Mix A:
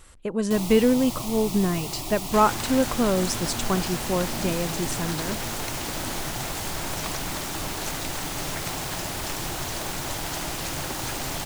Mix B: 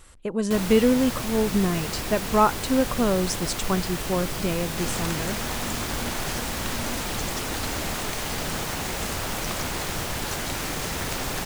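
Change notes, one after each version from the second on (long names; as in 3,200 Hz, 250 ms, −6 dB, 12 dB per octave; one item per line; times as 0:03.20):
first sound: remove phaser with its sweep stopped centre 320 Hz, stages 8
second sound: entry +2.45 s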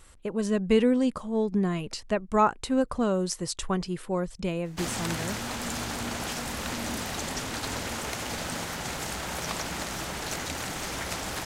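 speech −3.0 dB
first sound: muted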